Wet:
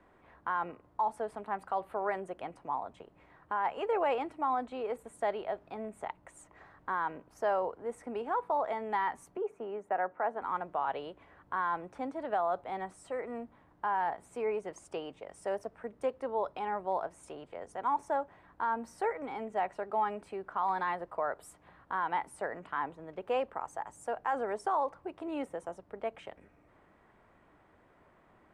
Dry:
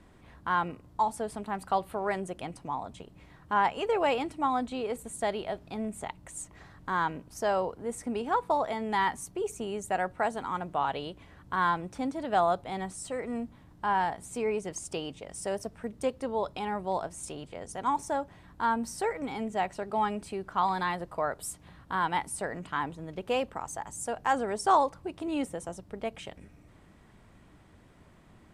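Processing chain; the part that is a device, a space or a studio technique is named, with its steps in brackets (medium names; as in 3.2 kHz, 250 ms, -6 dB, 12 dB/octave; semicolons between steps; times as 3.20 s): DJ mixer with the lows and highs turned down (three-band isolator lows -13 dB, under 360 Hz, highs -16 dB, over 2.2 kHz; peak limiter -22 dBFS, peak gain reduction 9 dB); 9.37–10.42 s: three-band isolator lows -16 dB, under 160 Hz, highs -17 dB, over 2.4 kHz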